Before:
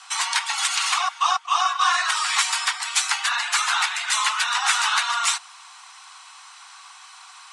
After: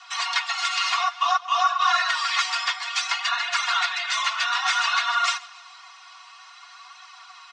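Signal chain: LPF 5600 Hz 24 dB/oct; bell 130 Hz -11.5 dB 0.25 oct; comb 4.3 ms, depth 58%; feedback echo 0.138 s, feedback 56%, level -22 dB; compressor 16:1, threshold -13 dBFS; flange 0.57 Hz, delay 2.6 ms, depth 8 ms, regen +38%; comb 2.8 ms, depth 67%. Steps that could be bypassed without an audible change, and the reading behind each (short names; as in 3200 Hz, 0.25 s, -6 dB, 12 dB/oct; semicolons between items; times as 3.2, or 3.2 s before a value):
bell 130 Hz: input band starts at 640 Hz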